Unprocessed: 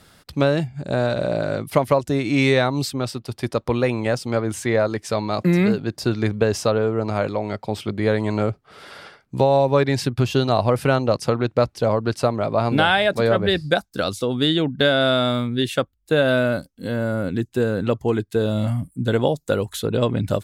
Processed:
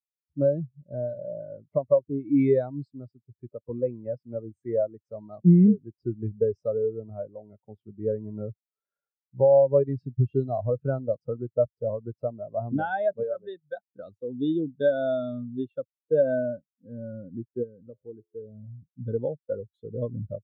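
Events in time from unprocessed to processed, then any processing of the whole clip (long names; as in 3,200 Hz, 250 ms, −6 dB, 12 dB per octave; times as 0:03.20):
0:13.23–0:13.82: low-shelf EQ 350 Hz −11 dB
0:17.63–0:18.82: tuned comb filter 86 Hz, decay 0.84 s, mix 50%
whole clip: high-shelf EQ 2,100 Hz −4 dB; every bin expanded away from the loudest bin 2.5 to 1; level −4 dB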